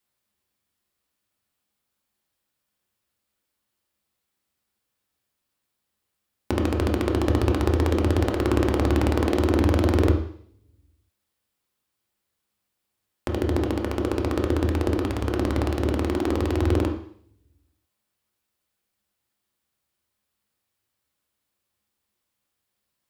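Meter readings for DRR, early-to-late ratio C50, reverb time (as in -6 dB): 2.0 dB, 7.0 dB, 0.60 s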